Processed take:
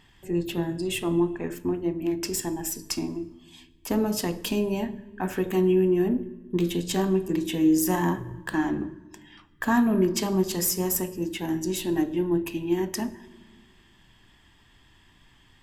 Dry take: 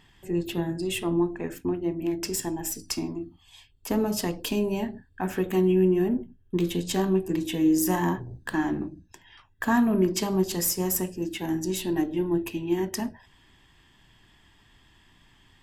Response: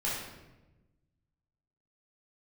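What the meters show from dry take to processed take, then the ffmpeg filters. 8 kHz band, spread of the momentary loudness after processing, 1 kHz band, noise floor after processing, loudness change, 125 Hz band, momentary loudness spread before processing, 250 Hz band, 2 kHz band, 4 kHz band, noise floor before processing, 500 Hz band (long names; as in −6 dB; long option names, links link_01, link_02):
+0.5 dB, 10 LU, +0.5 dB, −58 dBFS, +0.5 dB, 0.0 dB, 10 LU, +0.5 dB, +0.5 dB, +0.5 dB, −60 dBFS, +0.5 dB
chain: -filter_complex "[0:a]asplit=2[link_01][link_02];[link_02]asuperstop=centerf=760:order=4:qfactor=3.6[link_03];[1:a]atrim=start_sample=2205,asetrate=29547,aresample=44100[link_04];[link_03][link_04]afir=irnorm=-1:irlink=0,volume=-23.5dB[link_05];[link_01][link_05]amix=inputs=2:normalize=0"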